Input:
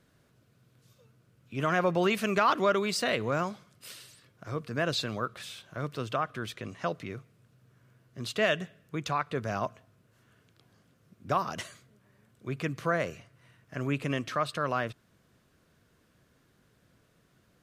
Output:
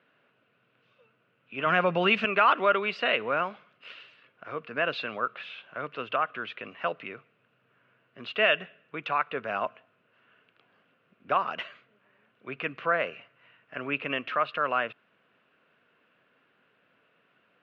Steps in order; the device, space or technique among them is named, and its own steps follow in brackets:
phone earpiece (loudspeaker in its box 330–3,000 Hz, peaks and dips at 340 Hz −5 dB, 1,400 Hz +4 dB, 2,700 Hz +9 dB)
0:01.66–0:02.25: bass and treble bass +11 dB, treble +10 dB
level +2 dB

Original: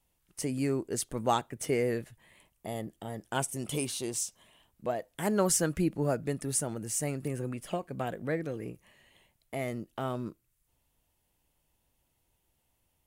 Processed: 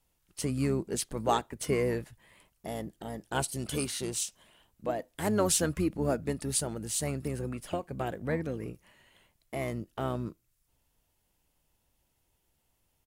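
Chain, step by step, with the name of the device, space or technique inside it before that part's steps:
octave pedal (pitch-shifted copies added −12 semitones −9 dB)

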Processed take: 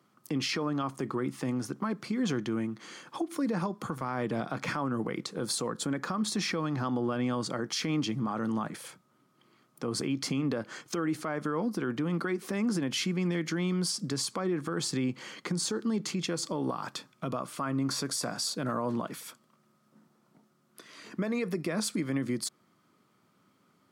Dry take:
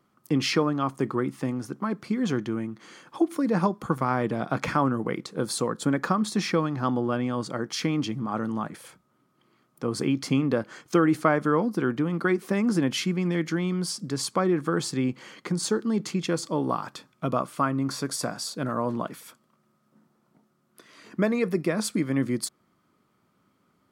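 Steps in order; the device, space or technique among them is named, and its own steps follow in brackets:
broadcast voice chain (high-pass filter 100 Hz 24 dB per octave; de-essing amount 45%; downward compressor, threshold −25 dBFS, peak gain reduction 9.5 dB; parametric band 5,400 Hz +3.5 dB 2.3 octaves; brickwall limiter −22 dBFS, peak gain reduction 10 dB)

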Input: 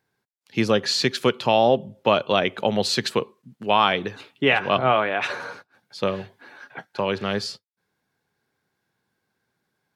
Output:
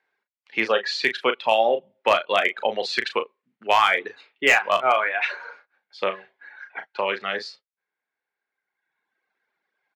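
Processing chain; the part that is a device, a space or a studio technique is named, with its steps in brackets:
reverb reduction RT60 1.7 s
megaphone (band-pass filter 500–3,200 Hz; parametric band 2,100 Hz +7 dB 0.59 octaves; hard clipping −9.5 dBFS, distortion −21 dB; double-tracking delay 36 ms −9 dB)
level +1.5 dB

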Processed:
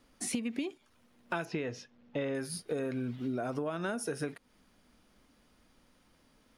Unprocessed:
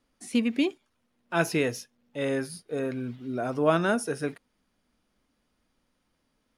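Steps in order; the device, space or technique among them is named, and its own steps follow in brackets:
0:01.45–0:02.35: high-frequency loss of the air 160 metres
serial compression, leveller first (downward compressor 3 to 1, threshold −26 dBFS, peak gain reduction 7.5 dB; downward compressor 8 to 1, threshold −40 dBFS, peak gain reduction 16.5 dB)
level +8 dB

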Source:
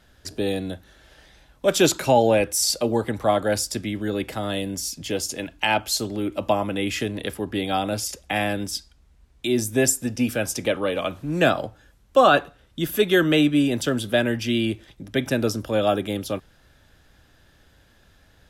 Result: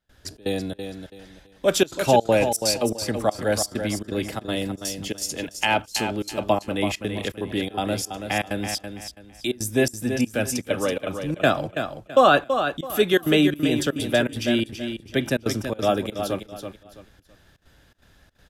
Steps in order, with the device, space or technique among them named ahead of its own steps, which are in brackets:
trance gate with a delay (gate pattern ".xxx.xxx" 164 BPM −24 dB; repeating echo 330 ms, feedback 28%, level −8 dB)

